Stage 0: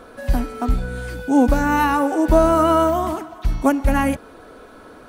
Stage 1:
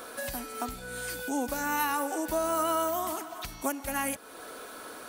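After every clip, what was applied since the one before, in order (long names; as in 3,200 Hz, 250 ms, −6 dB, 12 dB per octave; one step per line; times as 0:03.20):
downward compressor 2 to 1, threshold −34 dBFS, peak gain reduction 13.5 dB
RIAA equalisation recording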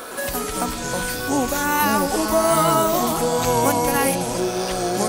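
delay with pitch and tempo change per echo 111 ms, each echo −5 semitones, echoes 3
level +9 dB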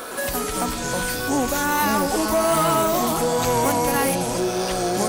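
soft clipping −14.5 dBFS, distortion −15 dB
level +1 dB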